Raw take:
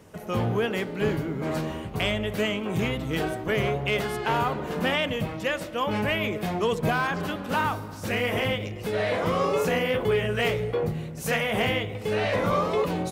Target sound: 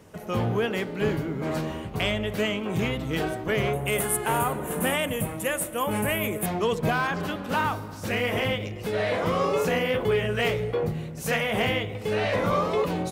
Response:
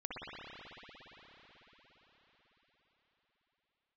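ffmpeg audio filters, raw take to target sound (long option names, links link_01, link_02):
-filter_complex "[0:a]asettb=1/sr,asplit=3[link_01][link_02][link_03];[link_01]atrim=end=3.734[link_04];[link_02]atrim=start=3.73:end=6.46,asetpts=PTS-STARTPTS,afade=type=in:duration=0.004:curve=qsin,afade=type=out:start_time=2.726:duration=0.004:curve=qsin,highshelf=frequency=7000:width_type=q:width=3:gain=13.5[link_05];[link_03]atrim=start=6.456[link_06];[link_04][link_05]acrossfade=duration=0.004:curve1=hsin:curve2=qsin[link_07];[link_07][link_06]acrossfade=duration=0.004:curve1=qsin:curve2=hsin"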